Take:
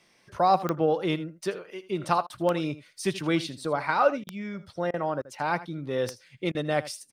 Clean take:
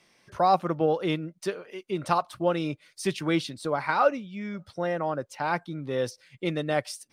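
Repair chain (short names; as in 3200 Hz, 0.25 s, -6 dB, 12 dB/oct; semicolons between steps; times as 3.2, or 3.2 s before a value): de-click; interpolate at 2.27/4.24/4.91/5.22/6.52, 27 ms; inverse comb 80 ms -16 dB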